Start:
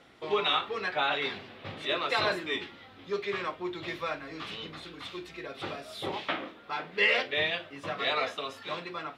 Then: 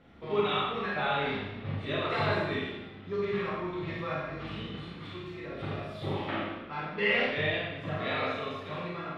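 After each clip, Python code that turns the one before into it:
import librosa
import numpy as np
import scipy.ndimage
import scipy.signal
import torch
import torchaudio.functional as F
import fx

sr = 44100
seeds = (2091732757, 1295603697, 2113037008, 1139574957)

y = fx.bass_treble(x, sr, bass_db=15, treble_db=-13)
y = fx.rev_schroeder(y, sr, rt60_s=1.0, comb_ms=27, drr_db=-4.5)
y = F.gain(torch.from_numpy(y), -6.5).numpy()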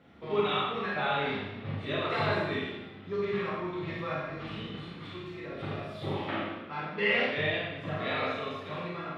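y = scipy.signal.sosfilt(scipy.signal.butter(2, 83.0, 'highpass', fs=sr, output='sos'), x)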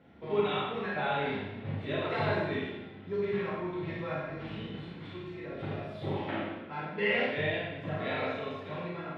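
y = fx.high_shelf(x, sr, hz=3400.0, db=-9.5)
y = fx.notch(y, sr, hz=1200.0, q=6.2)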